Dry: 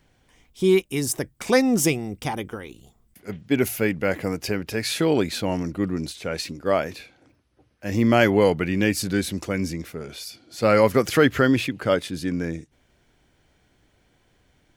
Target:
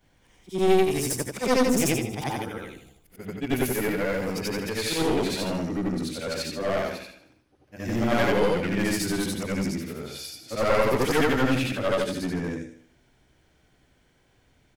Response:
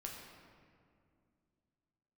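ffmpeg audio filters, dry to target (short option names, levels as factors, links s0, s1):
-af "afftfilt=real='re':imag='-im':win_size=8192:overlap=0.75,aecho=1:1:77|154|231|308|385:0.282|0.127|0.0571|0.0257|0.0116,aeval=exprs='clip(val(0),-1,0.0355)':c=same,volume=1.5"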